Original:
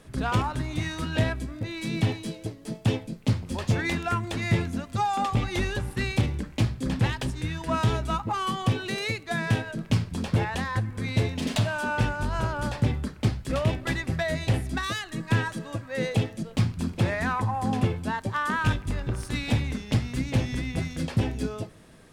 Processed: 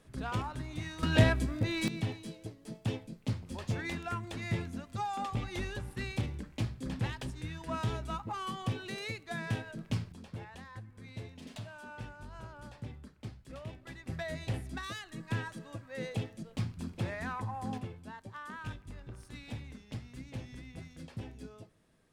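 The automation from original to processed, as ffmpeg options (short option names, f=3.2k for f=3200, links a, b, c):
-af "asetnsamples=n=441:p=0,asendcmd='1.03 volume volume 1dB;1.88 volume volume -10dB;10.12 volume volume -19.5dB;14.06 volume volume -11dB;17.78 volume volume -17.5dB',volume=-10dB"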